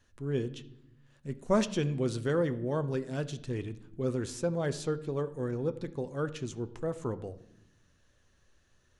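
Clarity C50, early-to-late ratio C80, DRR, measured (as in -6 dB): 16.0 dB, 18.5 dB, 10.0 dB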